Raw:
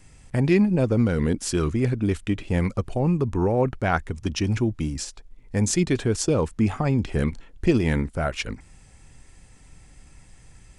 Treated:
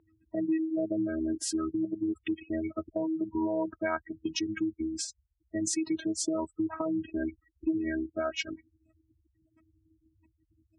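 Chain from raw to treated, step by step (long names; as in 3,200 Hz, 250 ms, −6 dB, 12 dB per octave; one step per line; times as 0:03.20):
gate on every frequency bin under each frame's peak −20 dB strong
phases set to zero 319 Hz
gate on every frequency bin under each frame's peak −30 dB strong
high-pass filter 74 Hz 24 dB per octave
low-shelf EQ 200 Hz −7.5 dB
downward compressor 2.5 to 1, threshold −31 dBFS, peak gain reduction 9 dB
low-pass that shuts in the quiet parts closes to 1,700 Hz, open at −31.5 dBFS
level +2 dB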